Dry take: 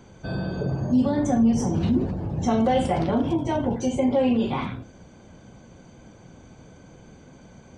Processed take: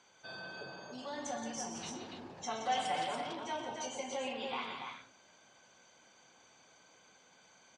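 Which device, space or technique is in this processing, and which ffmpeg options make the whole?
piezo pickup straight into a mixer: -filter_complex "[0:a]equalizer=f=950:w=0.66:g=5.5,asettb=1/sr,asplit=3[s0][s1][s2];[s0]atrim=end=2.614[s3];[s1]atrim=start=2.61:end=3.04,asetpts=PTS-STARTPTS,afade=t=in:d=0.004:c=qsin,afade=t=out:st=0.426:d=0.004:c=qsin,aecho=1:1:6.6:0.73,atrim=end_sample=18963[s4];[s2]atrim=start=3.036[s5];[s3][s4]acrossfade=d=0.004:c1=hsin:c2=qsin[s6];[s6][s5]acrossfade=d=0.004:c1=qsin:c2=hsin,lowpass=5100,aderivative,asettb=1/sr,asplit=3[s7][s8][s9];[s7]atrim=end=0.714[s10];[s8]atrim=start=0.71:end=1.13,asetpts=PTS-STARTPTS,afade=t=in:d=0.004:c=qsin,afade=t=out:st=0.416:d=0.004:c=qsin,lowshelf=f=180:g=-11[s11];[s9]atrim=start=1.126[s12];[s10][s11]acrossfade=d=0.004:c1=hsin:c2=qsin[s13];[s13][s12]acrossfade=d=0.004:c1=qsin:c2=hsin,aecho=1:1:122.4|172|285.7:0.282|0.398|0.562,volume=1.19"

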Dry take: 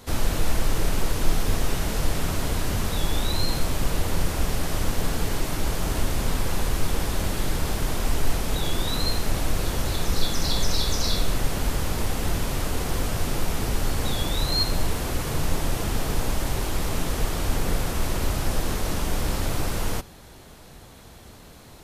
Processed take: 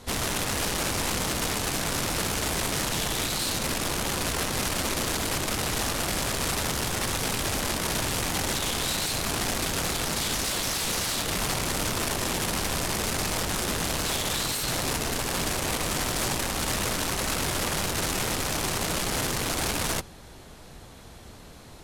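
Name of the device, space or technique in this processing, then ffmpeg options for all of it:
overflowing digital effects unit: -af "aeval=exprs='(mod(13.3*val(0)+1,2)-1)/13.3':c=same,lowpass=12000"

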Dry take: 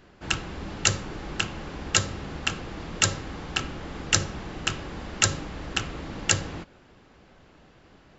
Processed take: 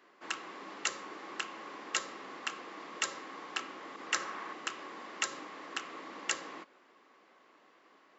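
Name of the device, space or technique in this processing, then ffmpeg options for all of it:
laptop speaker: -filter_complex "[0:a]highpass=f=280:w=0.5412,highpass=f=280:w=1.3066,equalizer=f=1100:t=o:w=0.27:g=11.5,equalizer=f=2000:t=o:w=0.39:g=6,alimiter=limit=0.376:level=0:latency=1:release=137,asettb=1/sr,asplit=3[s0][s1][s2];[s0]atrim=end=3.964[s3];[s1]atrim=start=3.96:end=4.53,asetpts=PTS-STARTPTS,afade=t=in:d=0.004:c=qsin,afade=t=out:st=0.566:d=0.004:c=qsin,adynamicequalizer=threshold=0.01:dfrequency=1400:dqfactor=0.89:tfrequency=1400:tqfactor=0.89:attack=5:release=100:ratio=0.375:range=3.5:mode=boostabove:tftype=bell[s4];[s2]atrim=start=4.526[s5];[s3][s4]acrossfade=d=0.004:c1=hsin:c2=qsin[s6];[s6][s5]acrossfade=d=0.004:c1=qsin:c2=hsin,volume=0.376"

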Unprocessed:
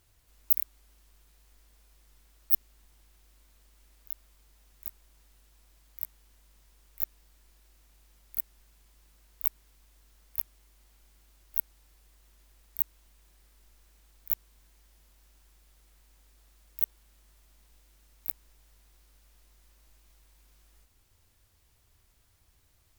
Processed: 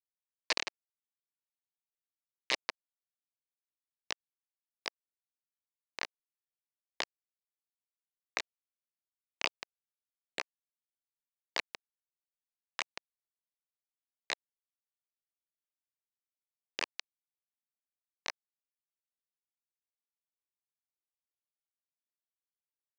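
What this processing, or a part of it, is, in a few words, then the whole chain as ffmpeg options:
hand-held game console: -filter_complex "[0:a]asettb=1/sr,asplit=3[s0][s1][s2];[s0]atrim=end=2.534[s3];[s1]atrim=start=2.53:end=4.12,asetpts=PTS-STARTPTS,afade=t=in:d=0.004:c=qsin,afade=t=out:st=1.586:d=0.004:c=qsin,highpass=f=990:w=0.5412,highpass=f=990:w=1.3066[s4];[s2]atrim=start=4.116[s5];[s3][s4]acrossfade=d=0.004:c1=hsin:c2=qsin[s6];[s6][s5]acrossfade=d=0.004:c1=qsin:c2=hsin,asplit=2[s7][s8];[s8]adelay=157.4,volume=0.2,highshelf=f=4000:g=-3.54[s9];[s7][s9]amix=inputs=2:normalize=0,acrusher=bits=3:mix=0:aa=0.000001,highpass=480,equalizer=f=750:t=q:w=4:g=-7,equalizer=f=1400:t=q:w=4:g=-9,equalizer=f=3400:t=q:w=4:g=-9,lowpass=f=4300:w=0.5412,lowpass=f=4300:w=1.3066,volume=6.31"

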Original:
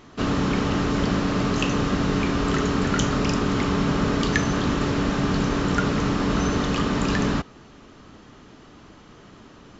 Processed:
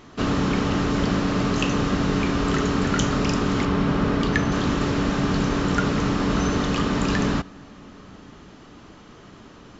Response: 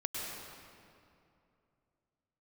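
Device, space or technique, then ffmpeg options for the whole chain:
compressed reverb return: -filter_complex "[0:a]asplit=2[s0][s1];[1:a]atrim=start_sample=2205[s2];[s1][s2]afir=irnorm=-1:irlink=0,acompressor=threshold=0.0398:ratio=6,volume=0.2[s3];[s0][s3]amix=inputs=2:normalize=0,asettb=1/sr,asplit=3[s4][s5][s6];[s4]atrim=end=3.654[s7];[s5]atrim=start=3.65:end=4.52,asetpts=PTS-STARTPTS,afade=t=in:d=0.004:c=qsin,afade=t=out:st=0.866:d=0.004:c=qsin,aemphasis=mode=reproduction:type=50fm[s8];[s6]atrim=start=4.516[s9];[s7][s8]acrossfade=d=0.004:c1=hsin:c2=qsin[s10];[s10][s9]acrossfade=d=0.004:c1=qsin:c2=hsin"

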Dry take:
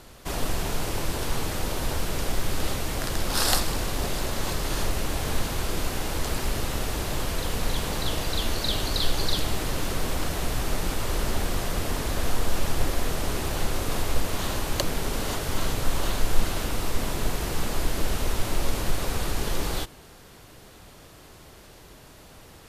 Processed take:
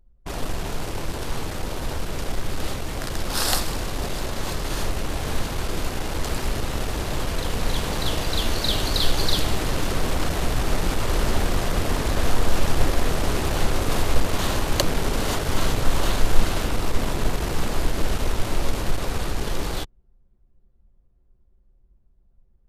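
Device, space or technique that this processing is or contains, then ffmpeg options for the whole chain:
voice memo with heavy noise removal: -af "anlmdn=15.8,dynaudnorm=f=990:g=11:m=3.76"

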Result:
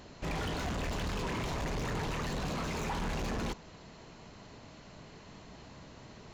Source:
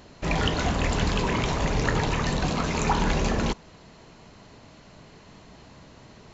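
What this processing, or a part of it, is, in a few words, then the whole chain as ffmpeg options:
saturation between pre-emphasis and de-emphasis: -af "highshelf=f=3300:g=11.5,asoftclip=type=tanh:threshold=0.0335,highshelf=f=3300:g=-11.5,volume=0.794"

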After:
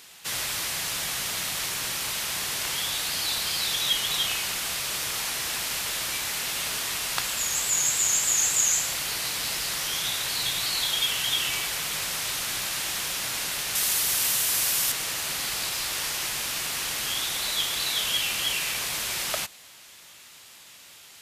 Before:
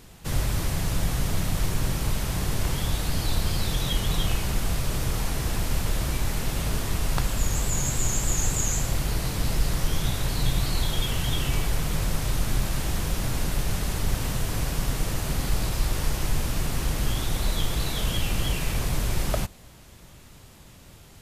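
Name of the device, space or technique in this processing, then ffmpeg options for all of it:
filter by subtraction: -filter_complex "[0:a]asplit=2[s0][s1];[s1]lowpass=2900,volume=-1[s2];[s0][s2]amix=inputs=2:normalize=0,asettb=1/sr,asplit=3[s3][s4][s5];[s3]atrim=end=13.754[s6];[s4]atrim=start=13.75:end=14.92,asetpts=PTS-STARTPTS,afade=t=in:d=0.004:c=qsin,afade=t=out:st=1.166:d=0.004:c=qsin,highshelf=f=6800:g=11[s7];[s5]atrim=start=14.916[s8];[s6][s7]acrossfade=d=0.004:c1=hsin:c2=qsin[s9];[s9][s8]acrossfade=d=0.004:c1=qsin:c2=hsin,volume=1.88"

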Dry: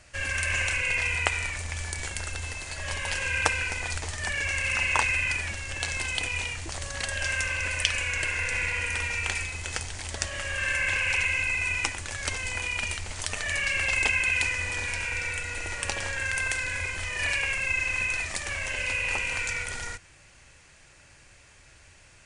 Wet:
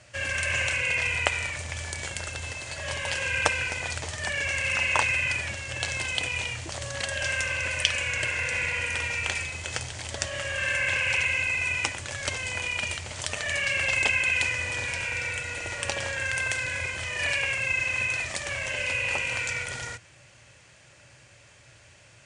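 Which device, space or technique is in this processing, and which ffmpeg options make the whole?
car door speaker: -af "highpass=85,equalizer=f=120:t=q:w=4:g=10,equalizer=f=580:t=q:w=4:g=6,equalizer=f=3200:t=q:w=4:g=3,lowpass=f=9400:w=0.5412,lowpass=f=9400:w=1.3066"

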